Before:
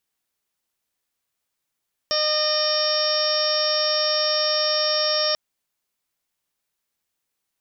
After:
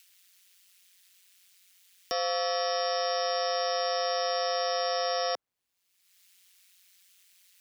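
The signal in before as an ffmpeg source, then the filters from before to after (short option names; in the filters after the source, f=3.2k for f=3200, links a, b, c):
-f lavfi -i "aevalsrc='0.0631*sin(2*PI*610*t)+0.0316*sin(2*PI*1220*t)+0.0224*sin(2*PI*1830*t)+0.0112*sin(2*PI*2440*t)+0.0211*sin(2*PI*3050*t)+0.0251*sin(2*PI*3660*t)+0.0141*sin(2*PI*4270*t)+0.0335*sin(2*PI*4880*t)+0.0794*sin(2*PI*5490*t)':d=3.24:s=44100"
-filter_complex "[0:a]highshelf=f=2.4k:g=-11.5,acrossover=split=200|660|2200[a][b][c][d];[d]acompressor=mode=upward:threshold=-33dB:ratio=2.5[e];[a][b][c][e]amix=inputs=4:normalize=0,aeval=exprs='val(0)*sin(2*PI*92*n/s)':c=same"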